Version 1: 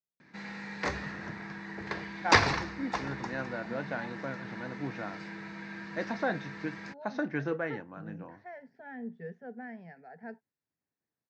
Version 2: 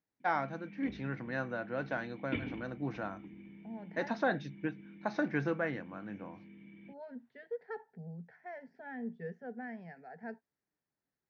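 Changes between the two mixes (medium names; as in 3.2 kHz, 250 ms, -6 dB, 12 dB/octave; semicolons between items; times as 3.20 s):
first voice: entry -2.00 s; background: add cascade formant filter i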